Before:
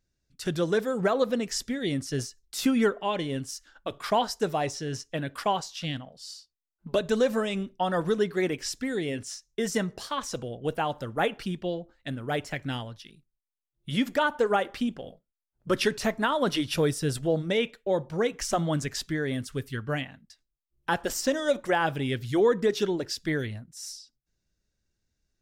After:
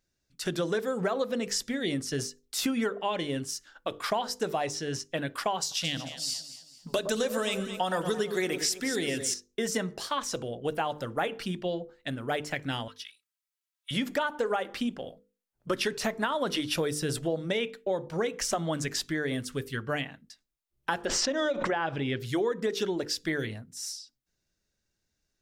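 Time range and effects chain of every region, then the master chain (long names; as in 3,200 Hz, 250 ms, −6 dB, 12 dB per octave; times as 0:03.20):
0:05.60–0:09.34: high-shelf EQ 3,800 Hz +11.5 dB + delay that swaps between a low-pass and a high-pass 111 ms, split 1,300 Hz, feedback 60%, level −9 dB
0:12.88–0:13.91: high-pass filter 1,100 Hz 24 dB per octave + comb filter 3.1 ms, depth 93%
0:21.05–0:22.20: high-frequency loss of the air 140 metres + background raised ahead of every attack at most 44 dB per second
whole clip: low-shelf EQ 150 Hz −8 dB; mains-hum notches 50/100/150/200/250/300/350/400/450/500 Hz; downward compressor 5 to 1, threshold −28 dBFS; level +2.5 dB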